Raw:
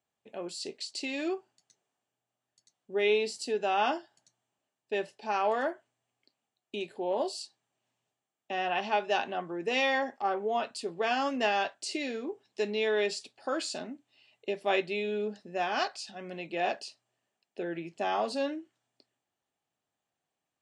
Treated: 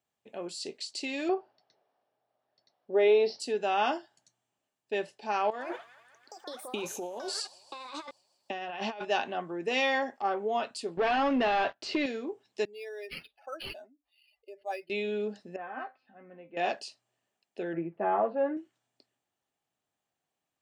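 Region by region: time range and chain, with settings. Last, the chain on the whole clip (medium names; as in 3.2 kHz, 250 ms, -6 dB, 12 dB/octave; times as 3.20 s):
1.29–3.40 s: peaking EQ 600 Hz +15 dB 1.7 oct + compression 1.5:1, threshold -23 dBFS + rippled Chebyshev low-pass 5.6 kHz, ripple 3 dB
5.50–9.05 s: feedback echo behind a high-pass 158 ms, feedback 67%, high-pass 1.4 kHz, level -22 dB + compressor with a negative ratio -37 dBFS + ever faster or slower copies 99 ms, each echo +6 st, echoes 2, each echo -6 dB
10.97–12.06 s: waveshaping leveller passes 3 + compression 2.5:1, threshold -25 dBFS + distance through air 240 m
12.65–14.90 s: spectral contrast enhancement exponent 2 + high-pass 930 Hz + decimation joined by straight lines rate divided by 6×
15.56–16.57 s: low-pass 1.9 kHz 24 dB/octave + feedback comb 260 Hz, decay 0.17 s, mix 80%
17.73–18.57 s: inverse Chebyshev low-pass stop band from 5.8 kHz, stop band 60 dB + peaking EQ 460 Hz +4.5 dB 0.59 oct + comb 5.9 ms
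whole clip: none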